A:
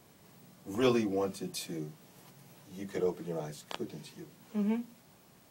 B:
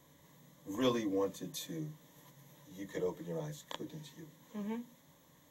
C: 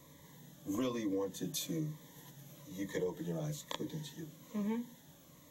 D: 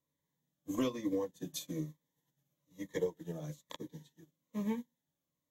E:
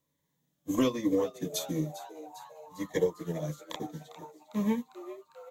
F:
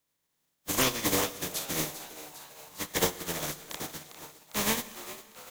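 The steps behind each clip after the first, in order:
EQ curve with evenly spaced ripples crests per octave 1.1, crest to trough 11 dB; level −5 dB
downward compressor 10 to 1, threshold −37 dBFS, peak gain reduction 12 dB; phaser whose notches keep moving one way falling 1.1 Hz; level +5.5 dB
expander for the loud parts 2.5 to 1, over −55 dBFS; level +4.5 dB
echo with shifted repeats 401 ms, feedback 63%, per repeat +150 Hz, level −15 dB; level +7 dB
compressing power law on the bin magnitudes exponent 0.34; on a send at −15 dB: convolution reverb RT60 2.1 s, pre-delay 47 ms

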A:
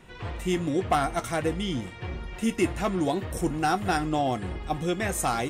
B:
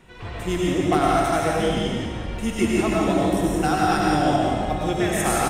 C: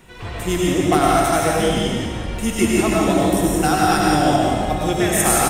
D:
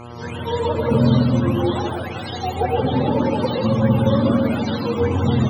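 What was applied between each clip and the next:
on a send: single-tap delay 171 ms −7.5 dB; on the sum: comb and all-pass reverb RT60 1.6 s, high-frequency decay 0.95×, pre-delay 60 ms, DRR −4 dB
high-shelf EQ 7,500 Hz +11 dB; level +3.5 dB
frequency axis turned over on the octave scale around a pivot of 410 Hz; backwards echo 289 ms −14.5 dB; hum with harmonics 120 Hz, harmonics 11, −37 dBFS −3 dB per octave

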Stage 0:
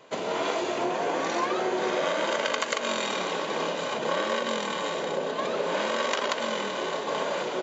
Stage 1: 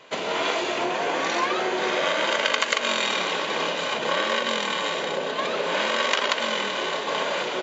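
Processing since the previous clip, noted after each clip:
parametric band 2,700 Hz +8 dB 2.3 octaves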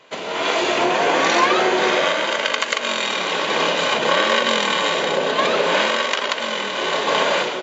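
automatic gain control gain up to 11 dB
level −1 dB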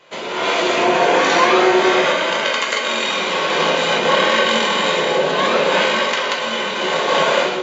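convolution reverb RT60 0.60 s, pre-delay 6 ms, DRR −1.5 dB
level −1.5 dB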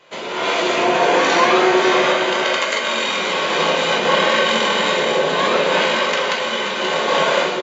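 single-tap delay 530 ms −9 dB
level −1 dB

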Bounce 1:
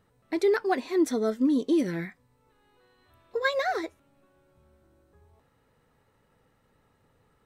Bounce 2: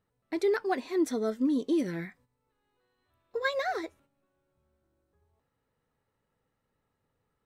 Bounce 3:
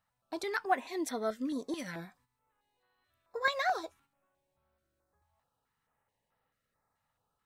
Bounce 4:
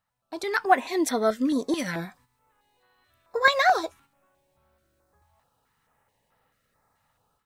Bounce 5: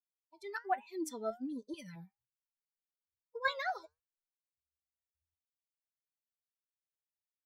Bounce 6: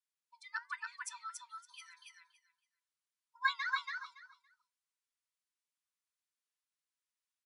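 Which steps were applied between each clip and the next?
noise gate −56 dBFS, range −9 dB; level −3.5 dB
low shelf with overshoot 540 Hz −8 dB, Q 1.5; notch on a step sequencer 4.6 Hz 390–6,900 Hz; level +1.5 dB
automatic gain control gain up to 11 dB
spectral dynamics exaggerated over time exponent 2; flanger 1.2 Hz, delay 4.6 ms, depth 3.3 ms, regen +83%; level −8.5 dB
linear-phase brick-wall band-pass 890–11,000 Hz; repeating echo 282 ms, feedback 18%, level −3.5 dB; level +1.5 dB

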